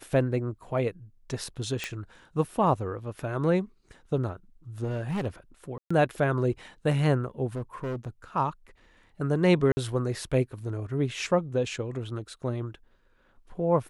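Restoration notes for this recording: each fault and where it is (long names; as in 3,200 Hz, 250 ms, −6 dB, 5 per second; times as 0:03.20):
0:01.84: click −15 dBFS
0:04.83–0:05.27: clipping −26 dBFS
0:05.78–0:05.91: drop-out 125 ms
0:07.55–0:08.08: clipping −29 dBFS
0:09.72–0:09.77: drop-out 50 ms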